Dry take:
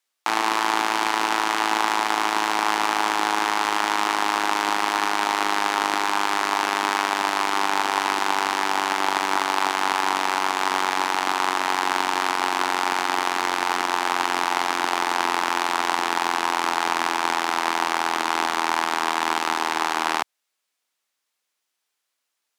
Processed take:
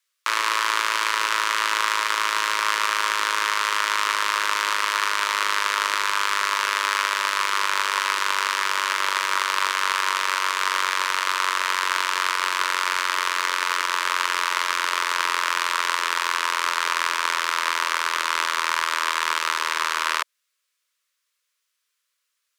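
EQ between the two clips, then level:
high-pass filter 540 Hz 24 dB per octave
Butterworth band-reject 770 Hz, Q 1.7
+2.5 dB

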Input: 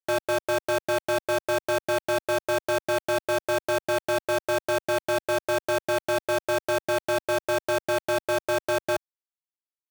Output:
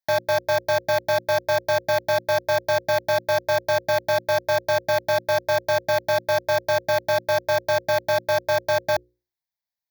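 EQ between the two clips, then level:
mains-hum notches 60/120/180/240/300/360/420/480/540 Hz
phaser with its sweep stopped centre 1,900 Hz, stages 8
+7.0 dB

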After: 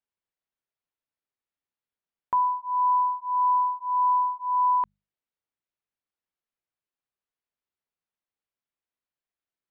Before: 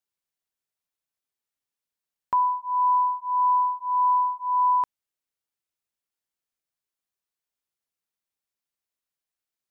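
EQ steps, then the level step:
high-frequency loss of the air 260 metres
mains-hum notches 50/100/150/200 Hz
0.0 dB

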